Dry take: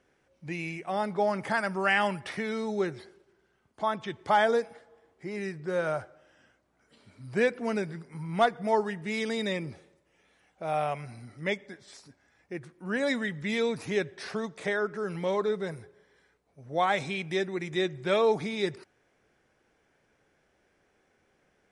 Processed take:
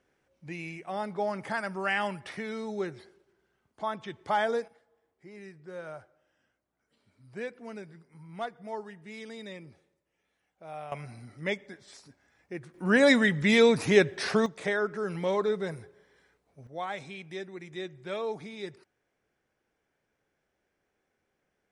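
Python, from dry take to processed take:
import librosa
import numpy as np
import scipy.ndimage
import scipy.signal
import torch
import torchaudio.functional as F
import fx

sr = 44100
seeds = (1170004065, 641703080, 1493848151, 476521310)

y = fx.gain(x, sr, db=fx.steps((0.0, -4.0), (4.68, -12.0), (10.92, -1.0), (12.74, 8.0), (14.46, 0.5), (16.67, -9.5)))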